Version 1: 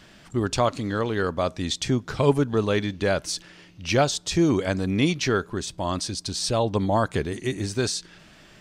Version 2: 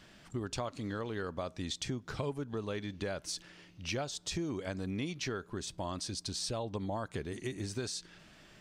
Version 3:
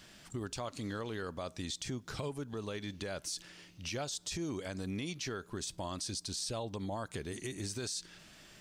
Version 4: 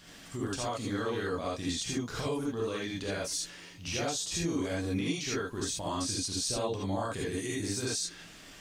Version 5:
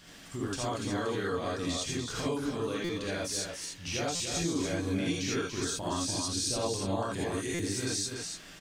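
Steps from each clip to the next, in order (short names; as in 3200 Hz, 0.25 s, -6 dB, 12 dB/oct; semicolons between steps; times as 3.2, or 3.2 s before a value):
compressor 5:1, threshold -27 dBFS, peak gain reduction 13 dB; gain -7 dB
high shelf 4300 Hz +10.5 dB; limiter -28 dBFS, peak gain reduction 9.5 dB; gain -1 dB
non-linear reverb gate 0.1 s rising, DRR -5.5 dB
echo 0.288 s -6 dB; stuck buffer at 2.84/4.15/7.54, samples 256, times 8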